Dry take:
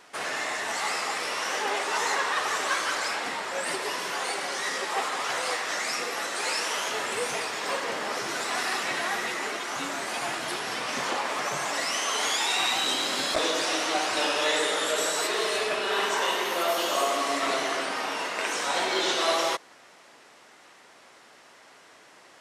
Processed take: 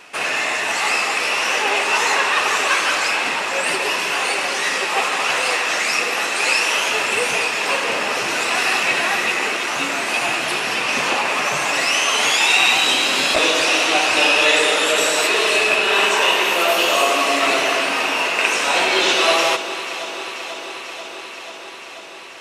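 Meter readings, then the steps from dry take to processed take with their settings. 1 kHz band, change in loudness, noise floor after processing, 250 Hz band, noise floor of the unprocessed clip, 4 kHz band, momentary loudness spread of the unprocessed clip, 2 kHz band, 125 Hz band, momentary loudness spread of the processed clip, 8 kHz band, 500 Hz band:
+8.0 dB, +10.5 dB, -34 dBFS, +8.0 dB, -54 dBFS, +10.0 dB, 6 LU, +12.0 dB, +8.0 dB, 11 LU, +8.0 dB, +8.5 dB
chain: peaking EQ 2.6 kHz +12 dB 0.27 oct; on a send: echo whose repeats swap between lows and highs 244 ms, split 980 Hz, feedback 87%, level -11.5 dB; on the sum: trim +7.5 dB

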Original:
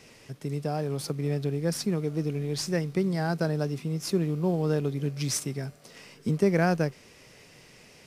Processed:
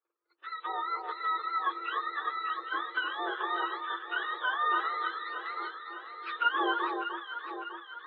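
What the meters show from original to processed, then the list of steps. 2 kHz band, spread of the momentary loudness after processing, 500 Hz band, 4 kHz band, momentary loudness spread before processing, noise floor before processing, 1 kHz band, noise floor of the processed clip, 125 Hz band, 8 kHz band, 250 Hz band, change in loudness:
+6.5 dB, 11 LU, -13.5 dB, -0.5 dB, 10 LU, -54 dBFS, +8.5 dB, -69 dBFS, under -40 dB, under -40 dB, -16.5 dB, -4.0 dB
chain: spectrum inverted on a logarithmic axis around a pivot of 750 Hz; low-pass 2.1 kHz 12 dB/octave; gate -44 dBFS, range -22 dB; spectral noise reduction 9 dB; rippled Chebyshev high-pass 330 Hz, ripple 9 dB; echo whose repeats swap between lows and highs 301 ms, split 1.4 kHz, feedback 74%, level -5 dB; trim +4 dB; AAC 32 kbps 24 kHz

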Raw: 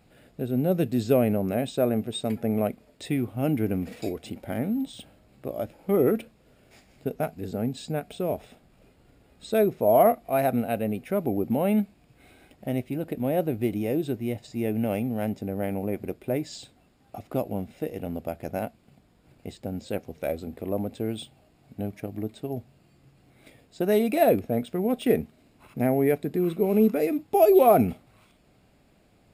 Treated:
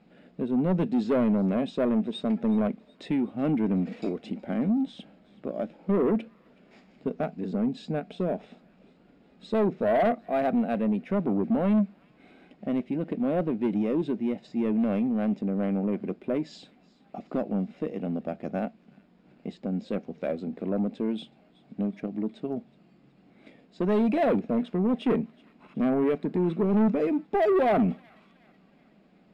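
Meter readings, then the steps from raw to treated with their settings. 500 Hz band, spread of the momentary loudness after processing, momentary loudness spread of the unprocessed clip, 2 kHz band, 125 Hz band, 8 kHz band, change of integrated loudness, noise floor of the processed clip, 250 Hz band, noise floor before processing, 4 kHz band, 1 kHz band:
-3.5 dB, 11 LU, 15 LU, -1.0 dB, -2.0 dB, under -15 dB, -1.5 dB, -60 dBFS, +1.5 dB, -61 dBFS, no reading, -3.5 dB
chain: resonant low shelf 140 Hz -10 dB, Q 3; saturation -18.5 dBFS, distortion -11 dB; distance through air 160 m; on a send: feedback echo behind a high-pass 372 ms, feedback 51%, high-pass 1.7 kHz, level -21.5 dB

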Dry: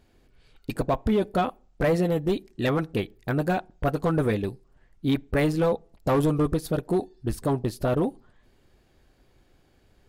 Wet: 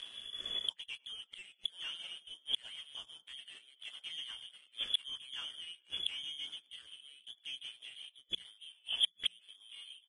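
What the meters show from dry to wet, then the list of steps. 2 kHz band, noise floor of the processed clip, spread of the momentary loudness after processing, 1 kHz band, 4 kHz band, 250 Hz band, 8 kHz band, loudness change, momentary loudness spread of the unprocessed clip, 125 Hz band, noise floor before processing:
-14.0 dB, -71 dBFS, 15 LU, -31.5 dB, +8.0 dB, under -40 dB, -7.5 dB, -13.5 dB, 7 LU, under -40 dB, -62 dBFS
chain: ever faster or slower copies 393 ms, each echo -3 st, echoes 2, each echo -6 dB; frequency inversion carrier 3.4 kHz; rotary cabinet horn 0.9 Hz; bass shelf 65 Hz +8.5 dB; doubling 16 ms -6 dB; in parallel at -5.5 dB: one-sided clip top -21.5 dBFS, bottom -14.5 dBFS; on the sum: bass shelf 160 Hz -5.5 dB; on a send: filtered feedback delay 96 ms, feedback 50%, low-pass 1.1 kHz, level -10.5 dB; on the sum: inverted gate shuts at -25 dBFS, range -37 dB; hum notches 60/120/180 Hz; waveshaping leveller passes 2; trim +4.5 dB; Vorbis 32 kbps 22.05 kHz

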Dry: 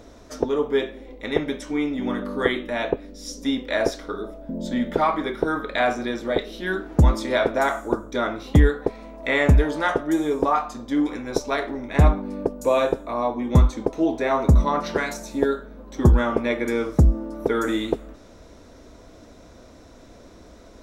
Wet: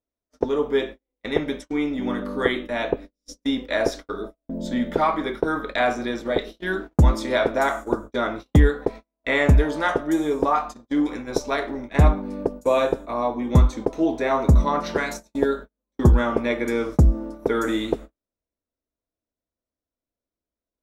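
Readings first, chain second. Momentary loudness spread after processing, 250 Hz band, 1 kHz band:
10 LU, 0.0 dB, 0.0 dB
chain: gate -32 dBFS, range -45 dB

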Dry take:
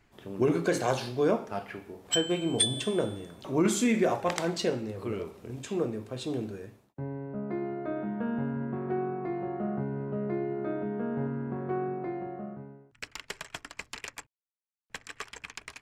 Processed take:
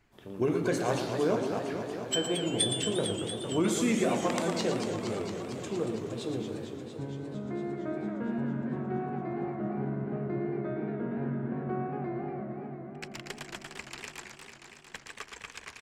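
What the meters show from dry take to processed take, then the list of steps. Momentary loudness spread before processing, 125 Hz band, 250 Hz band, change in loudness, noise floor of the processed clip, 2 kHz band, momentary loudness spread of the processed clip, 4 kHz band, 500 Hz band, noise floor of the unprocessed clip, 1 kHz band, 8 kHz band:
17 LU, 0.0 dB, -0.5 dB, -1.0 dB, -52 dBFS, -1.0 dB, 15 LU, -1.0 dB, -1.0 dB, -68 dBFS, -1.0 dB, -1.0 dB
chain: delay 115 ms -9 dB; modulated delay 229 ms, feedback 77%, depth 195 cents, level -7.5 dB; trim -3 dB

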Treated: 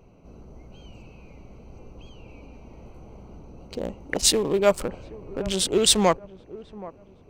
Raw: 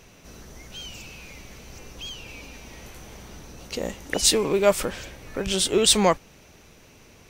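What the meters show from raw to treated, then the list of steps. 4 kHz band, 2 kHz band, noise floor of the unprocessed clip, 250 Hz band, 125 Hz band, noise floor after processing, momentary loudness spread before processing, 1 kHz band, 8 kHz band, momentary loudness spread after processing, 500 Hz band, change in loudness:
-1.0 dB, -2.5 dB, -52 dBFS, 0.0 dB, 0.0 dB, -52 dBFS, 22 LU, -0.5 dB, -1.0 dB, 23 LU, -0.5 dB, -0.5 dB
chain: local Wiener filter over 25 samples; feedback echo behind a low-pass 776 ms, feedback 34%, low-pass 1.2 kHz, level -18 dB

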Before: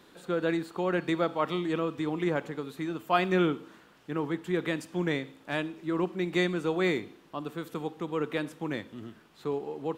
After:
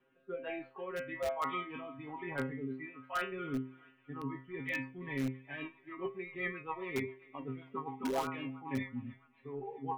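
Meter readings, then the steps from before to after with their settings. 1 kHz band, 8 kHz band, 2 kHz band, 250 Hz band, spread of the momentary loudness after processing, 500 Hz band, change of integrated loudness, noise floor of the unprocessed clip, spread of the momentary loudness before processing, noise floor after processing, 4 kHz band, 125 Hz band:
-6.0 dB, -5.0 dB, -6.0 dB, -10.0 dB, 9 LU, -10.5 dB, -9.0 dB, -58 dBFS, 10 LU, -68 dBFS, -11.5 dB, -9.0 dB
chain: elliptic low-pass 2.9 kHz, stop band 50 dB; spectral noise reduction 19 dB; reverse; compression 8:1, threshold -39 dBFS, peak gain reduction 18.5 dB; reverse; painted sound rise, 8.03–8.25 s, 220–1500 Hz -38 dBFS; inharmonic resonator 130 Hz, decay 0.44 s, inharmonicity 0.002; thinning echo 330 ms, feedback 70%, high-pass 1.1 kHz, level -20 dB; in parallel at -8 dB: integer overflow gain 46 dB; on the sum: rotary cabinet horn 1.2 Hz, later 7.5 Hz, at 4.68 s; trim +18 dB

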